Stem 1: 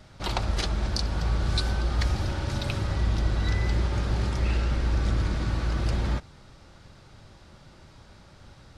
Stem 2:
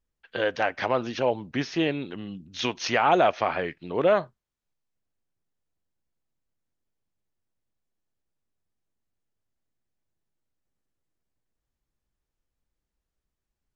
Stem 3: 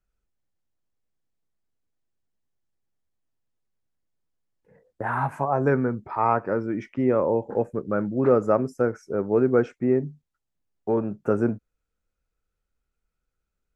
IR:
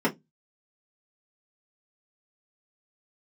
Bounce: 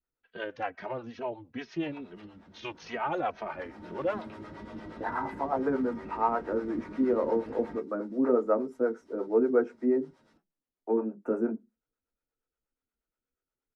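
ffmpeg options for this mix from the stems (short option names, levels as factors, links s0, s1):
-filter_complex "[0:a]acrossover=split=3500[s0][s1];[s1]acompressor=threshold=0.00178:ratio=4:attack=1:release=60[s2];[s0][s2]amix=inputs=2:normalize=0,flanger=delay=9.5:depth=1.2:regen=29:speed=0.36:shape=sinusoidal,adelay=1600,volume=0.335,afade=t=in:st=3.34:d=0.79:silence=0.223872,asplit=2[s3][s4];[s4]volume=0.398[s5];[1:a]lowpass=f=2700:p=1,lowshelf=f=290:g=7,asplit=2[s6][s7];[s7]adelay=2.8,afreqshift=-2.3[s8];[s6][s8]amix=inputs=2:normalize=1,volume=0.75[s9];[2:a]highpass=f=170:w=0.5412,highpass=f=170:w=1.3066,highshelf=f=2100:g=-8,volume=0.596,asplit=2[s10][s11];[s11]volume=0.168[s12];[3:a]atrim=start_sample=2205[s13];[s5][s12]amix=inputs=2:normalize=0[s14];[s14][s13]afir=irnorm=-1:irlink=0[s15];[s3][s9][s10][s15]amix=inputs=4:normalize=0,adynamicequalizer=threshold=0.00251:dfrequency=3300:dqfactor=1.4:tfrequency=3300:tqfactor=1.4:attack=5:release=100:ratio=0.375:range=3:mode=cutabove:tftype=bell,acrossover=split=420[s16][s17];[s16]aeval=exprs='val(0)*(1-0.7/2+0.7/2*cos(2*PI*8.4*n/s))':c=same[s18];[s17]aeval=exprs='val(0)*(1-0.7/2-0.7/2*cos(2*PI*8.4*n/s))':c=same[s19];[s18][s19]amix=inputs=2:normalize=0,lowshelf=f=230:g=-11"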